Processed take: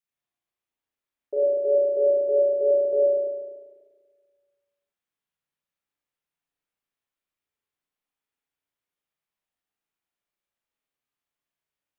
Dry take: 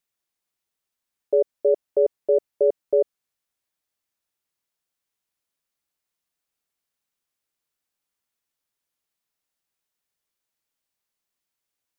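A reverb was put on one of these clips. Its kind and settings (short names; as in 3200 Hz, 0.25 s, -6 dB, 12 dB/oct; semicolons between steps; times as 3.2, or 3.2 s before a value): spring tank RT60 1.6 s, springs 35/49 ms, chirp 70 ms, DRR -7.5 dB; gain -10.5 dB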